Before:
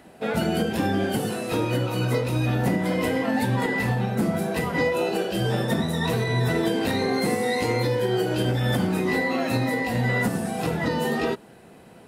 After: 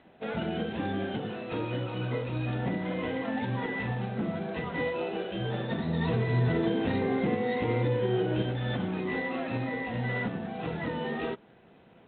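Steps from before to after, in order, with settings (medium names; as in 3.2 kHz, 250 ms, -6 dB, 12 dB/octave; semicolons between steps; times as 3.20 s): 5.86–8.42 s: bass shelf 480 Hz +6.5 dB; trim -8 dB; G.726 24 kbps 8 kHz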